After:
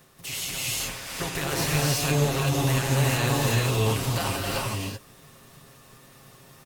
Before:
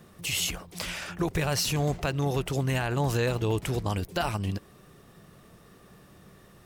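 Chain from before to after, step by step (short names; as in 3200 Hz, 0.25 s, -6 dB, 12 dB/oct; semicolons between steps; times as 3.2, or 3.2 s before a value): spectral contrast lowered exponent 0.62; comb 7.4 ms, depth 53%; non-linear reverb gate 0.41 s rising, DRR -4.5 dB; gain -5 dB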